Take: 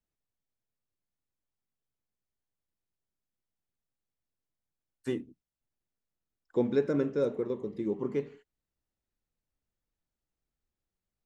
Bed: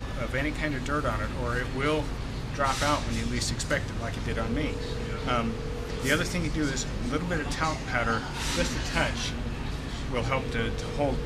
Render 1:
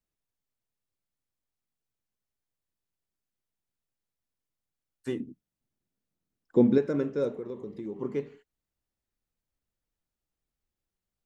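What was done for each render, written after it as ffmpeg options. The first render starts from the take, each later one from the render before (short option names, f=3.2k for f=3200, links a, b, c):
-filter_complex "[0:a]asettb=1/sr,asplit=3[a][b][c];[a]atrim=end=5.204[d];[b]atrim=start=5.2:end=6.78,asetpts=PTS-STARTPTS,afade=t=in:d=0.004:c=qsin,afade=t=out:st=1.576:d=0.004:c=qsin,equalizer=f=200:t=o:w=2.1:g=10.5[e];[c]atrim=start=6.776[f];[d][e]acrossfade=d=0.004:c1=hsin:c2=qsin[g];[g][f]acrossfade=d=0.004:c1=qsin:c2=hsin,asettb=1/sr,asplit=3[h][i][j];[h]atrim=end=7.334[k];[i]atrim=start=7.33:end=7.96,asetpts=PTS-STARTPTS,afade=t=in:d=0.004:c=qsin,afade=t=out:st=0.626:d=0.004:c=qsin,acompressor=threshold=-34dB:ratio=3:attack=3.2:release=140:knee=1:detection=peak[l];[j]atrim=start=7.956[m];[k][l]acrossfade=d=0.004:c1=hsin:c2=qsin[n];[n][m]acrossfade=d=0.004:c1=qsin:c2=hsin"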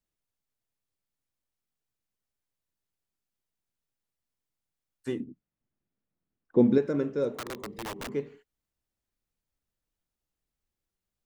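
-filter_complex "[0:a]asettb=1/sr,asplit=3[a][b][c];[a]atrim=end=5.244[d];[b]atrim=start=5.24:end=6.59,asetpts=PTS-STARTPTS,afade=t=in:d=0.004:c=qsin,afade=t=out:st=1.346:d=0.004:c=qsin,lowpass=2.4k[e];[c]atrim=start=6.586[f];[d][e]acrossfade=d=0.004:c1=hsin:c2=qsin[g];[g][f]acrossfade=d=0.004:c1=qsin:c2=hsin,asplit=3[h][i][j];[h]afade=t=out:st=7.35:d=0.02[k];[i]aeval=exprs='(mod(37.6*val(0)+1,2)-1)/37.6':c=same,afade=t=in:st=7.35:d=0.02,afade=t=out:st=8.07:d=0.02[l];[j]afade=t=in:st=8.07:d=0.02[m];[k][l][m]amix=inputs=3:normalize=0"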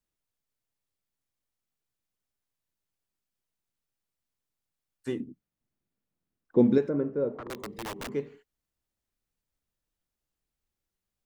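-filter_complex "[0:a]asplit=3[a][b][c];[a]afade=t=out:st=6.88:d=0.02[d];[b]lowpass=1.2k,afade=t=in:st=6.88:d=0.02,afade=t=out:st=7.49:d=0.02[e];[c]afade=t=in:st=7.49:d=0.02[f];[d][e][f]amix=inputs=3:normalize=0"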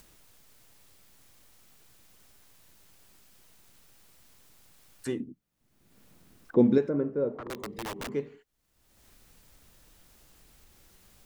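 -af "acompressor=mode=upward:threshold=-35dB:ratio=2.5"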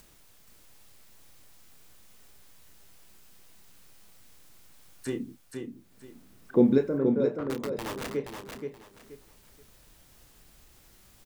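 -filter_complex "[0:a]asplit=2[a][b];[b]adelay=30,volume=-9dB[c];[a][c]amix=inputs=2:normalize=0,aecho=1:1:476|952|1428:0.531|0.133|0.0332"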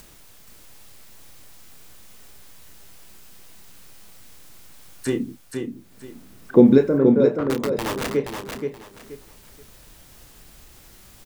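-af "volume=9dB,alimiter=limit=-2dB:level=0:latency=1"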